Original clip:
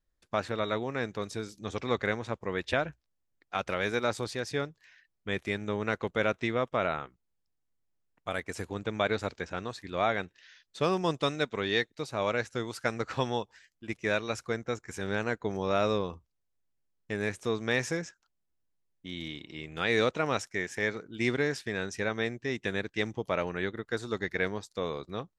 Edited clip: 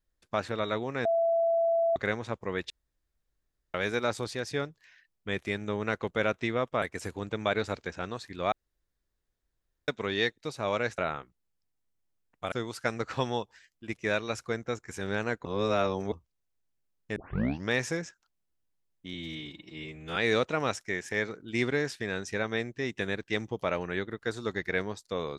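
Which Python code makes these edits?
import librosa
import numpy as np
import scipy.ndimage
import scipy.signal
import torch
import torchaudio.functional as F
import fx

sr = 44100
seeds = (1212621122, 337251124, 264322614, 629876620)

y = fx.edit(x, sr, fx.bleep(start_s=1.05, length_s=0.91, hz=668.0, db=-22.5),
    fx.room_tone_fill(start_s=2.7, length_s=1.04),
    fx.move(start_s=6.82, length_s=1.54, to_s=12.52),
    fx.room_tone_fill(start_s=10.06, length_s=1.36),
    fx.reverse_span(start_s=15.45, length_s=0.67),
    fx.tape_start(start_s=17.16, length_s=0.54),
    fx.stretch_span(start_s=19.14, length_s=0.68, factor=1.5), tone=tone)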